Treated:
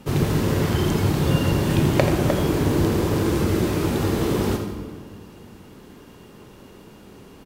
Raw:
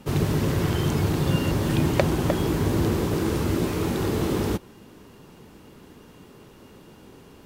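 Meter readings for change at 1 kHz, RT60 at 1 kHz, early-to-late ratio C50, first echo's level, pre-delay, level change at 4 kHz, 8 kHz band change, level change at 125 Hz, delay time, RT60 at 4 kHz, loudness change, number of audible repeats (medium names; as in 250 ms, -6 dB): +3.0 dB, 1.6 s, 5.5 dB, -10.5 dB, 19 ms, +3.0 dB, +2.5 dB, +3.0 dB, 84 ms, 1.3 s, +3.0 dB, 1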